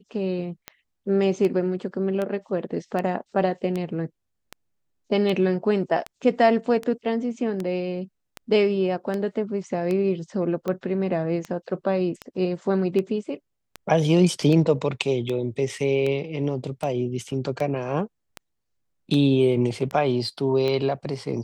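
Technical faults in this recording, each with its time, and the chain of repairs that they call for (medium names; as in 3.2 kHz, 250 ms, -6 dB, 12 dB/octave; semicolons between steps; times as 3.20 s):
tick 78 rpm -16 dBFS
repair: de-click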